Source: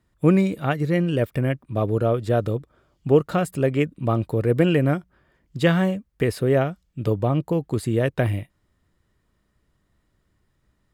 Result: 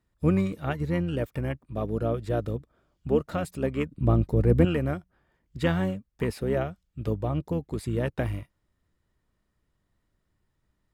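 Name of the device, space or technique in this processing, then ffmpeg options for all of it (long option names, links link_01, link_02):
octave pedal: -filter_complex "[0:a]asplit=2[link_01][link_02];[link_02]asetrate=22050,aresample=44100,atempo=2,volume=-7dB[link_03];[link_01][link_03]amix=inputs=2:normalize=0,asettb=1/sr,asplit=3[link_04][link_05][link_06];[link_04]atrim=end=3.914[link_07];[link_05]atrim=start=3.91:end=4.65,asetpts=PTS-STARTPTS,afade=type=in:duration=0.004:curve=qsin,afade=type=out:start_time=0.736:duration=0.004:curve=qsin,lowshelf=frequency=360:gain=10.5[link_08];[link_06]atrim=start=4.646[link_09];[link_07][link_08]acrossfade=duration=0.004:curve1=hsin:curve2=qsin[link_10];[link_10][link_09]acrossfade=duration=0.004:curve1=qsin:curve2=hsin,volume=-7.5dB"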